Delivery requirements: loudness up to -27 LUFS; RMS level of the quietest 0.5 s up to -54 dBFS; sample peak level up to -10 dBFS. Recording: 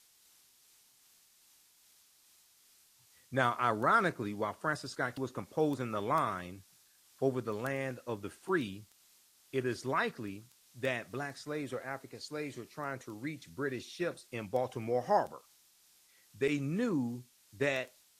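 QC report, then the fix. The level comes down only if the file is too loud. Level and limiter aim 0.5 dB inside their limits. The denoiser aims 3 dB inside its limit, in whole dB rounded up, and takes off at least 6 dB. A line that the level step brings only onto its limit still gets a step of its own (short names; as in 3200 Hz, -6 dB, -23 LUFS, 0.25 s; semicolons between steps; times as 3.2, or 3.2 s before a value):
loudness -35.0 LUFS: OK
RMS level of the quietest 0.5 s -66 dBFS: OK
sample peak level -13.5 dBFS: OK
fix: none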